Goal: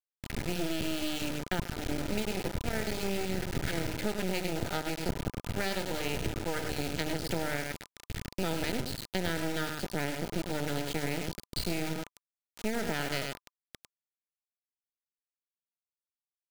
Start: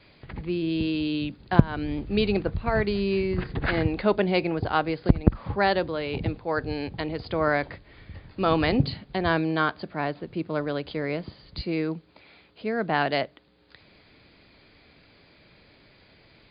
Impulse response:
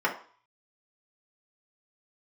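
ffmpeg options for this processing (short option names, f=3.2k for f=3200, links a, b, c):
-filter_complex "[0:a]apsyclip=6dB,bandreject=f=50:t=h:w=6,bandreject=f=100:t=h:w=6,bandreject=f=150:t=h:w=6,bandreject=f=200:t=h:w=6,bandreject=f=250:t=h:w=6,bandreject=f=300:t=h:w=6,bandreject=f=350:t=h:w=6,bandreject=f=400:t=h:w=6,bandreject=f=450:t=h:w=6,dynaudnorm=f=410:g=17:m=11dB,equalizer=f=930:w=1.4:g=-11.5,asplit=2[a][b];[b]aecho=0:1:101:0.422[c];[a][c]amix=inputs=2:normalize=0,acompressor=threshold=-26dB:ratio=12,acrusher=bits=3:dc=4:mix=0:aa=0.000001,asuperstop=centerf=1100:order=8:qfactor=6.4"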